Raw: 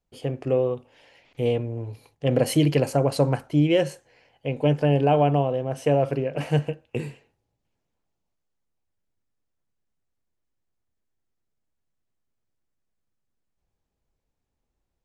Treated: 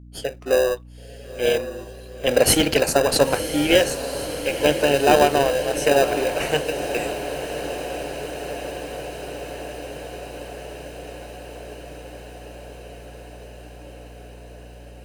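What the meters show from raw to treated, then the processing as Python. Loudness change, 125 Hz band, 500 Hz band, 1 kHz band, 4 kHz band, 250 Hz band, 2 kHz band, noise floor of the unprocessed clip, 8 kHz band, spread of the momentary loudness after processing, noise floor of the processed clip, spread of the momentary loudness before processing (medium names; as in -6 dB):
+2.5 dB, -8.5 dB, +5.0 dB, +5.5 dB, +12.0 dB, 0.0 dB, +12.5 dB, -80 dBFS, +15.0 dB, 22 LU, -41 dBFS, 13 LU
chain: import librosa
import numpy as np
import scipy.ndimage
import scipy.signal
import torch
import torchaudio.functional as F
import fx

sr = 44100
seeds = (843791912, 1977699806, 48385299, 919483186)

p1 = fx.noise_reduce_blind(x, sr, reduce_db=14)
p2 = scipy.signal.sosfilt(scipy.signal.butter(2, 500.0, 'highpass', fs=sr, output='sos'), p1)
p3 = fx.high_shelf(p2, sr, hz=2600.0, db=9.0)
p4 = fx.sample_hold(p3, sr, seeds[0], rate_hz=1100.0, jitter_pct=0)
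p5 = p3 + (p4 * 10.0 ** (-4.5 / 20.0))
p6 = fx.add_hum(p5, sr, base_hz=60, snr_db=19)
p7 = p6 + fx.echo_diffused(p6, sr, ms=991, feedback_pct=75, wet_db=-11, dry=0)
y = p7 * 10.0 ** (5.5 / 20.0)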